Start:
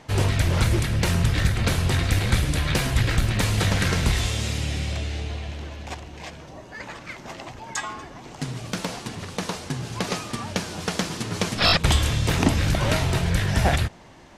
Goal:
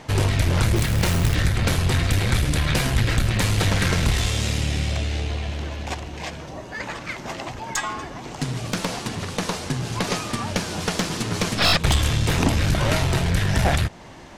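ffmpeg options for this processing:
-filter_complex "[0:a]asplit=2[s0][s1];[s1]acompressor=threshold=0.0316:ratio=6,volume=0.841[s2];[s0][s2]amix=inputs=2:normalize=0,aeval=exprs='(tanh(5.01*val(0)+0.4)-tanh(0.4))/5.01':c=same,asettb=1/sr,asplit=3[s3][s4][s5];[s3]atrim=end=0.764[s6];[s4]atrim=start=0.76:end=1.35,asetpts=PTS-STARTPTS,afade=t=in:d=0.004:c=qsin,afade=t=out:st=0.586:d=0.004:c=qsin,acrusher=bits=3:mode=log:mix=0:aa=0.000001[s7];[s5]atrim=start=1.346[s8];[s6][s7]acrossfade=d=0.004:c1=hsin:c2=qsin[s9];[s9][s8]acrossfade=d=0.004:c1=qsin:c2=hsin,volume=1.26"

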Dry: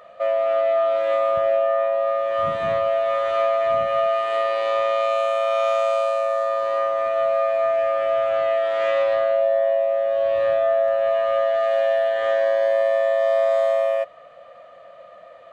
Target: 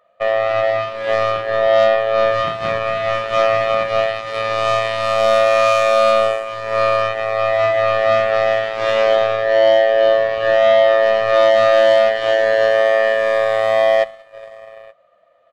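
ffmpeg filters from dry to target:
-af "aecho=1:1:141|287|420|884:0.106|0.316|0.237|0.282,aeval=exprs='0.376*(cos(1*acos(clip(val(0)/0.376,-1,1)))-cos(1*PI/2))+0.0473*(cos(7*acos(clip(val(0)/0.376,-1,1)))-cos(7*PI/2))':c=same,volume=1.78"

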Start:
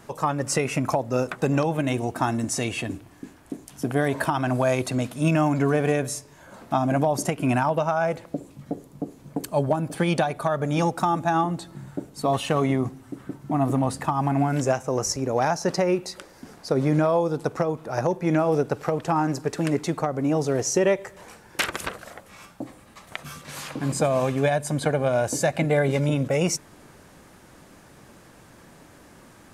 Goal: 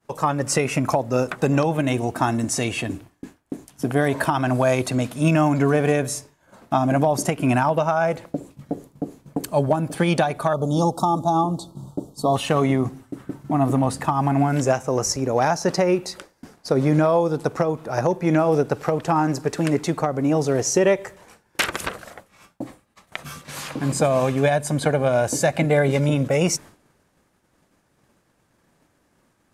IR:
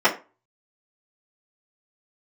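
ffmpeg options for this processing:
-filter_complex "[0:a]asettb=1/sr,asplit=3[s0][s1][s2];[s0]atrim=end=10.534[s3];[s1]atrim=start=10.53:end=12.36,asetpts=PTS-STARTPTS,afade=t=in:d=0.004:c=qsin,afade=t=out:st=1.826:d=0.004:c=qsin,asuperstop=centerf=2000:order=8:qfactor=0.91[s4];[s2]atrim=start=12.356[s5];[s3][s4]acrossfade=d=0.004:c1=hsin:c2=qsin[s6];[s6][s5]acrossfade=d=0.004:c1=qsin:c2=hsin,agate=range=0.0224:threshold=0.0126:ratio=3:detection=peak,volume=1.41"

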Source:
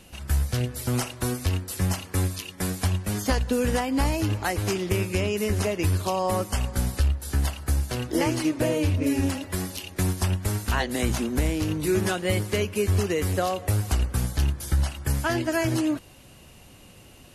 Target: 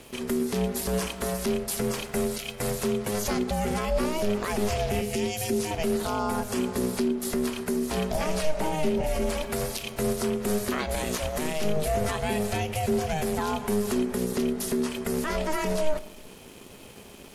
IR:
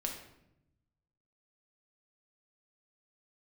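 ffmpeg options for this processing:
-filter_complex "[0:a]asettb=1/sr,asplit=3[s0][s1][s2];[s0]atrim=end=5.014[s3];[s1]atrim=start=5.01:end=5.71,asetpts=PTS-STARTPTS,afade=t=in:d=0.004:c=qsin,afade=t=out:st=0.696:d=0.004:c=qsin,acrossover=split=150|3000[s4][s5][s6];[s5]acompressor=threshold=0.00891:ratio=4[s7];[s4][s7][s6]amix=inputs=3:normalize=0[s8];[s2]atrim=start=5.706[s9];[s3][s8]acrossfade=d=0.004:c1=hsin:c2=qsin[s10];[s10][s9]acrossfade=d=0.004:c1=qsin:c2=hsin,asettb=1/sr,asplit=3[s11][s12][s13];[s11]atrim=end=11.044[s14];[s12]atrim=start=11.04:end=11.64,asetpts=PTS-STARTPTS,afade=t=in:d=0.004:c=qsin,afade=t=out:st=0.596:d=0.004:c=qsin,lowshelf=f=420:g=-8.5[s15];[s13]atrim=start=11.636[s16];[s14][s15]acrossfade=d=0.004:c1=hsin:c2=qsin[s17];[s17][s16]acrossfade=d=0.004:c1=qsin:c2=hsin,alimiter=limit=0.0631:level=0:latency=1:release=84,aeval=exprs='sgn(val(0))*max(abs(val(0))-0.00106,0)':c=same,aeval=exprs='val(0)*sin(2*PI*310*n/s)':c=same,asplit=2[s18][s19];[1:a]atrim=start_sample=2205,asetrate=52920,aresample=44100[s20];[s19][s20]afir=irnorm=-1:irlink=0,volume=0.422[s21];[s18][s21]amix=inputs=2:normalize=0,volume=1.88"

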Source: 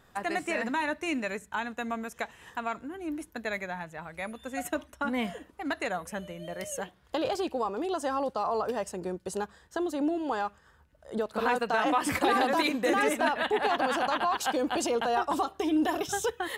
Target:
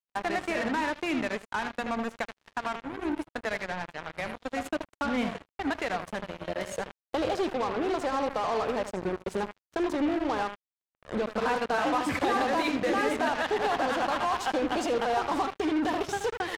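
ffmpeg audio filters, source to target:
-filter_complex "[0:a]aeval=exprs='val(0)+0.5*0.00891*sgn(val(0))':c=same,acompressor=threshold=0.00562:ratio=1.5,asplit=2[s0][s1];[s1]adelay=79,lowpass=f=2800:p=1,volume=0.398,asplit=2[s2][s3];[s3]adelay=79,lowpass=f=2800:p=1,volume=0.22,asplit=2[s4][s5];[s5]adelay=79,lowpass=f=2800:p=1,volume=0.22[s6];[s2][s4][s6]amix=inputs=3:normalize=0[s7];[s0][s7]amix=inputs=2:normalize=0,acrusher=bits=5:mix=0:aa=0.5,aemphasis=mode=reproduction:type=50fm,volume=2"

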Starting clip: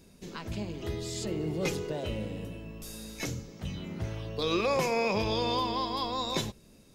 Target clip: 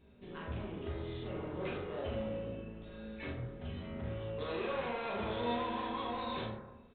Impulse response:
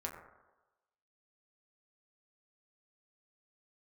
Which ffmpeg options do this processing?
-filter_complex "[0:a]aresample=8000,volume=44.7,asoftclip=hard,volume=0.0224,aresample=44100,aecho=1:1:42|71:0.631|0.335[s0];[1:a]atrim=start_sample=2205[s1];[s0][s1]afir=irnorm=-1:irlink=0,volume=0.596"

